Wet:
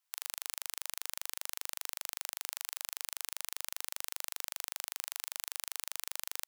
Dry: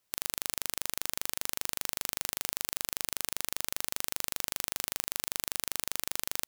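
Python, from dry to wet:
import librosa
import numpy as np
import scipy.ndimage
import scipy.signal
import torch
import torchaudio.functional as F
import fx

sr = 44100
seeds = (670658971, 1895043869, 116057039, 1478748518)

y = scipy.signal.sosfilt(scipy.signal.butter(4, 760.0, 'highpass', fs=sr, output='sos'), x)
y = F.gain(torch.from_numpy(y), -5.5).numpy()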